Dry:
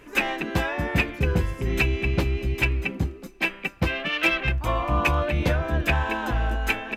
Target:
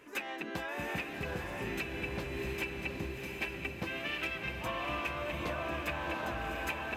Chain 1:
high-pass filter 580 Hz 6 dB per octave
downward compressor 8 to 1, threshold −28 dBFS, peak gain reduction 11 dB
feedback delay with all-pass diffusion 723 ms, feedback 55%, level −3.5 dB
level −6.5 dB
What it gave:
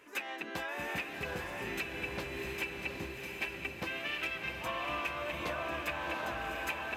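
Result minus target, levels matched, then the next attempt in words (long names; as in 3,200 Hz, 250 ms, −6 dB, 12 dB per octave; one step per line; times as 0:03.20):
250 Hz band −3.0 dB
high-pass filter 230 Hz 6 dB per octave
downward compressor 8 to 1, threshold −28 dBFS, peak gain reduction 11.5 dB
feedback delay with all-pass diffusion 723 ms, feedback 55%, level −3.5 dB
level −6.5 dB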